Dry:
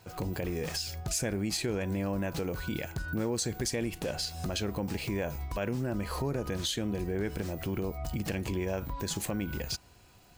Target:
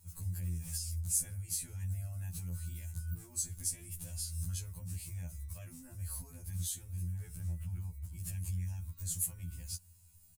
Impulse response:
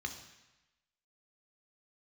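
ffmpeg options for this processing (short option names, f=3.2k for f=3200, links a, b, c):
-filter_complex "[0:a]asettb=1/sr,asplit=3[a][b][c];[a]atrim=end=7.394[d];[b]atrim=start=7.39:end=8.16,asetpts=PTS-STARTPTS,afade=t=in:d=0.004:c=qsin,afade=t=out:st=0.766:d=0.004:c=qsin,acrossover=split=2700[e][f];[f]acompressor=threshold=-55dB:ratio=4:attack=1:release=60[g];[e][g]amix=inputs=2:normalize=0[h];[c]atrim=start=8.156[i];[d][h]acrossfade=d=0.004:c1=hsin:c2=qsin[j];[j][i]acrossfade=d=0.004:c1=qsin:c2=hsin,firequalizer=gain_entry='entry(110,0);entry(230,-18);entry(390,-30);entry(900,-20);entry(4100,-13);entry(9400,10);entry(16000,4)':delay=0.05:min_phase=1,afftfilt=real='re*2*eq(mod(b,4),0)':imag='im*2*eq(mod(b,4),0)':win_size=2048:overlap=0.75"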